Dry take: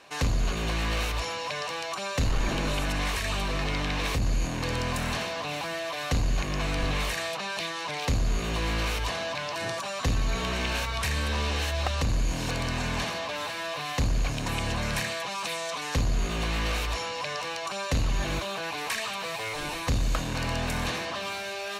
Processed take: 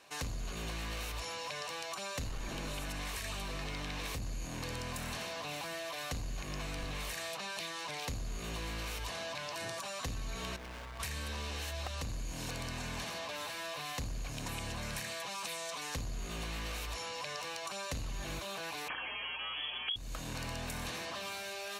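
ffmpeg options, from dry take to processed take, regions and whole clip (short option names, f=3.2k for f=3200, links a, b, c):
-filter_complex "[0:a]asettb=1/sr,asplit=3[a][b][c];[a]atrim=end=10.564[d];[b]atrim=start=10.56:end=11,asetpts=PTS-STARTPTS,afade=t=in:d=0.004:c=qsin,afade=t=out:st=0.436:d=0.004:c=qsin,lowpass=1.7k,asoftclip=type=hard:threshold=-36.5dB[e];[c]atrim=start=10.996[f];[d][e]acrossfade=d=0.004:c1=hsin:c2=qsin[g];[g][f]acrossfade=d=0.004:c1=qsin:c2=hsin,asettb=1/sr,asplit=3[h][i][j];[h]atrim=end=18.884[k];[i]atrim=start=18.88:end=19.96,asetpts=PTS-STARTPTS,afade=t=in:d=0.004:c=qsin,afade=t=out:st=1.076:d=0.004:c=qsin,lowshelf=f=440:g=9.5,lowpass=f=2.9k:t=q:w=0.5098,lowpass=f=2.9k:t=q:w=0.6013,lowpass=f=2.9k:t=q:w=0.9,lowpass=f=2.9k:t=q:w=2.563,afreqshift=-3400,aeval=exprs='val(0)+0.002*(sin(2*PI*60*n/s)+sin(2*PI*2*60*n/s)/2+sin(2*PI*3*60*n/s)/3+sin(2*PI*4*60*n/s)/4+sin(2*PI*5*60*n/s)/5)':c=same[l];[j]atrim=start=19.956[m];[k][l]acrossfade=d=0.004:c1=hsin:c2=qsin[n];[n][m]acrossfade=d=0.004:c1=qsin:c2=hsin,highshelf=f=6.9k:g=10,acompressor=threshold=-28dB:ratio=6,volume=-8dB"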